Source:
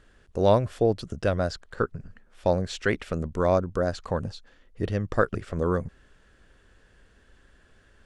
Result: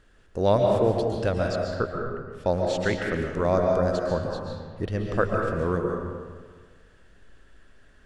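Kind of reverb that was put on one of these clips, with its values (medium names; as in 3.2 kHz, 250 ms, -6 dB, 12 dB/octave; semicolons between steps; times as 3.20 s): algorithmic reverb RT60 1.6 s, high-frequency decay 0.6×, pre-delay 95 ms, DRR 0.5 dB; trim -1.5 dB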